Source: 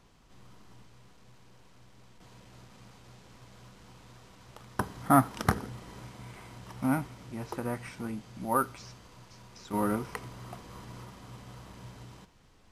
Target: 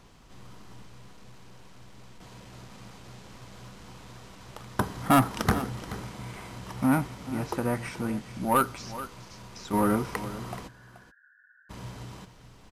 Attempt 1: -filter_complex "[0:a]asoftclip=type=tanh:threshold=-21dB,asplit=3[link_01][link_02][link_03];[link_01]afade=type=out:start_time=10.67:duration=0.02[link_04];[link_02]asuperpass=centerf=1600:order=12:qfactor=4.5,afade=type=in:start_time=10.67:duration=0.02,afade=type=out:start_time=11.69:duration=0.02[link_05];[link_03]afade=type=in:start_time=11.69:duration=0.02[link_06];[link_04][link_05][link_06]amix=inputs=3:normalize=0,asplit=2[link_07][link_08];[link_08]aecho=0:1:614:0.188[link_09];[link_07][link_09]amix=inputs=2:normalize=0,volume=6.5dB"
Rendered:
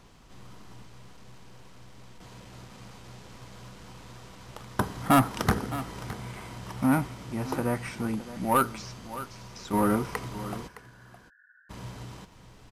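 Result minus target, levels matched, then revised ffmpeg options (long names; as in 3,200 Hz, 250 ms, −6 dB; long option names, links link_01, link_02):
echo 185 ms late
-filter_complex "[0:a]asoftclip=type=tanh:threshold=-21dB,asplit=3[link_01][link_02][link_03];[link_01]afade=type=out:start_time=10.67:duration=0.02[link_04];[link_02]asuperpass=centerf=1600:order=12:qfactor=4.5,afade=type=in:start_time=10.67:duration=0.02,afade=type=out:start_time=11.69:duration=0.02[link_05];[link_03]afade=type=in:start_time=11.69:duration=0.02[link_06];[link_04][link_05][link_06]amix=inputs=3:normalize=0,asplit=2[link_07][link_08];[link_08]aecho=0:1:429:0.188[link_09];[link_07][link_09]amix=inputs=2:normalize=0,volume=6.5dB"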